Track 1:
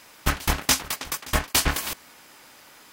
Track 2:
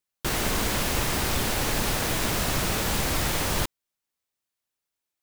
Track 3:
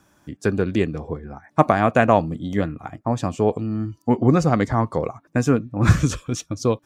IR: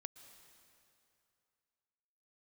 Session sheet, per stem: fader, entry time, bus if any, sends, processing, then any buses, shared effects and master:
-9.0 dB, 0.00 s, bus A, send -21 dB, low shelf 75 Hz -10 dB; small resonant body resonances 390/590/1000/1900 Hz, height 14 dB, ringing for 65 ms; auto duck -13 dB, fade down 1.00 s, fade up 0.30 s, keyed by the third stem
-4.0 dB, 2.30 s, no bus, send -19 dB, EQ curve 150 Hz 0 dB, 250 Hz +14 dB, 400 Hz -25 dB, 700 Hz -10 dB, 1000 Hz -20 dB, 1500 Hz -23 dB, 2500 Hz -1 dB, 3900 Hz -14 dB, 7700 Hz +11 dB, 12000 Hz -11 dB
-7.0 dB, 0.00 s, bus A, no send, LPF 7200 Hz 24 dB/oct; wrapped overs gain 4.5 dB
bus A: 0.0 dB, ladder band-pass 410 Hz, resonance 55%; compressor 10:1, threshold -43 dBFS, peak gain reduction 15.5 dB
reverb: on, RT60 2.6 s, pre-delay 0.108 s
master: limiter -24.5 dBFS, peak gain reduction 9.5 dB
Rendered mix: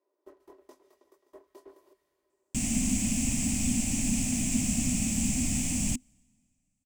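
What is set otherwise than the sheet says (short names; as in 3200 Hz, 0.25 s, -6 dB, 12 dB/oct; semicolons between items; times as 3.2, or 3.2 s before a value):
stem 1 -9.0 dB -> -19.0 dB; stem 3: muted; master: missing limiter -24.5 dBFS, peak gain reduction 9.5 dB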